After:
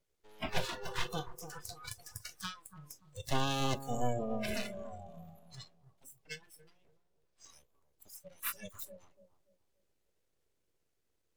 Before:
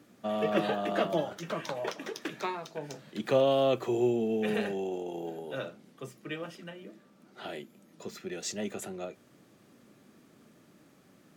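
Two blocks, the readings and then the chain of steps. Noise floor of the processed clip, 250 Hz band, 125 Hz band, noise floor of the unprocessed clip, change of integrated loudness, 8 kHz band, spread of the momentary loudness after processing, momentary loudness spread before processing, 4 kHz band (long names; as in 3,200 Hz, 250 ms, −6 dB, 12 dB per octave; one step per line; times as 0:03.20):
−79 dBFS, −10.0 dB, −1.0 dB, −61 dBFS, −7.0 dB, −1.0 dB, 20 LU, 18 LU, −1.5 dB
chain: parametric band 700 Hz −13.5 dB 2.8 octaves
full-wave rectification
noise reduction from a noise print of the clip's start 22 dB
on a send: bucket-brigade delay 288 ms, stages 2,048, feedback 30%, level −11 dB
on the sum: level +6.5 dB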